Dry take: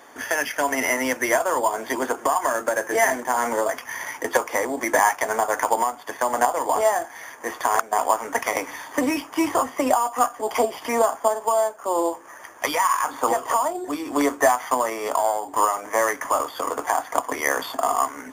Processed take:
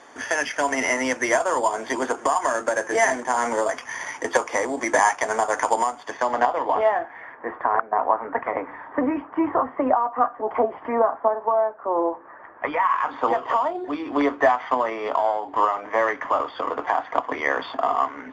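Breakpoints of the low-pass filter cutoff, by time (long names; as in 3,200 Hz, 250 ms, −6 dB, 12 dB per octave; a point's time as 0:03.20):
low-pass filter 24 dB per octave
0:05.99 8,300 Hz
0:06.38 4,400 Hz
0:07.53 1,700 Hz
0:12.52 1,700 Hz
0:13.11 3,600 Hz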